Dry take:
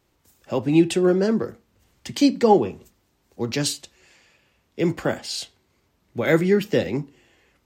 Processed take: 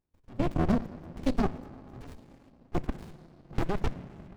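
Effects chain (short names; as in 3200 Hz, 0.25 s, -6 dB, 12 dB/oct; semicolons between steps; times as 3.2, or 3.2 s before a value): granular stretch 0.57×, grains 26 ms; level quantiser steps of 21 dB; on a send at -15 dB: reverb RT60 2.9 s, pre-delay 7 ms; on the sum: running maximum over 65 samples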